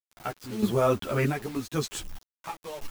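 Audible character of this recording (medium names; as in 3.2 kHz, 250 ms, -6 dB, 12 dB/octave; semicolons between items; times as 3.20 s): random-step tremolo 3.2 Hz, depth 90%; a quantiser's noise floor 8-bit, dither none; a shimmering, thickened sound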